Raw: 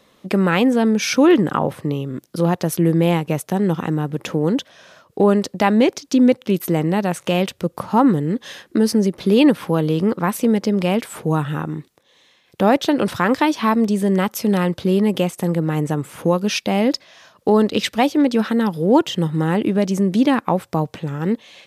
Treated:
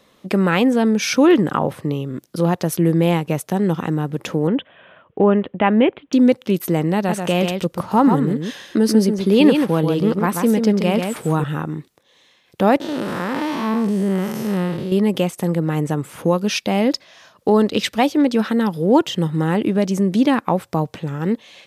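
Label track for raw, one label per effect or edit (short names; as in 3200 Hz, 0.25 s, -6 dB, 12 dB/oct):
4.470000	6.130000	steep low-pass 3300 Hz 72 dB/oct
6.950000	11.440000	echo 0.137 s -5.5 dB
12.800000	14.920000	time blur width 0.225 s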